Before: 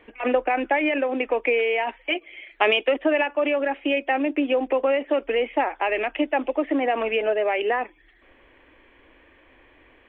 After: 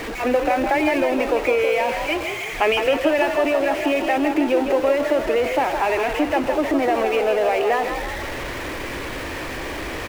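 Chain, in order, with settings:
converter with a step at zero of −23 dBFS
high-shelf EQ 3,300 Hz −9 dB
echo with shifted repeats 161 ms, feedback 52%, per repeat +44 Hz, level −6.5 dB

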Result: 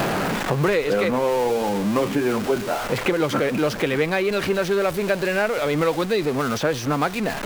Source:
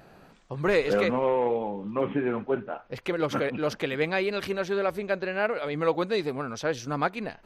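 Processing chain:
converter with a step at zero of −31.5 dBFS
multiband upward and downward compressor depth 100%
level +3 dB

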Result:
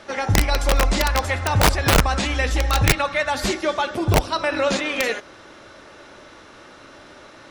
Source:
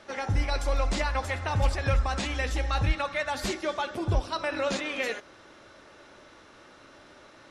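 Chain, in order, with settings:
wrap-around overflow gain 17 dB
level +8 dB

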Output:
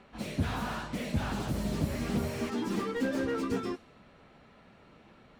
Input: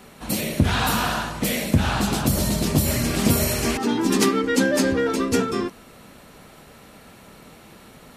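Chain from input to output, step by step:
low-pass that shuts in the quiet parts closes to 3,000 Hz, open at −17 dBFS
time stretch by phase vocoder 0.66×
slew-rate limiting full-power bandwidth 60 Hz
level −7 dB

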